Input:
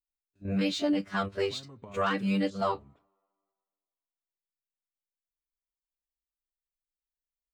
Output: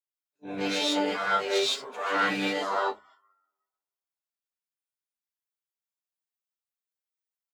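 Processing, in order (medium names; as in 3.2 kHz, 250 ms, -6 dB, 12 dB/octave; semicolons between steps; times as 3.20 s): harmony voices -7 st -13 dB, +7 st -10 dB; high-pass 540 Hz 12 dB/octave; reverse; compression 6:1, threshold -39 dBFS, peak gain reduction 13.5 dB; reverse; gated-style reverb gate 180 ms rising, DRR -6.5 dB; spectral noise reduction 17 dB; trim +7.5 dB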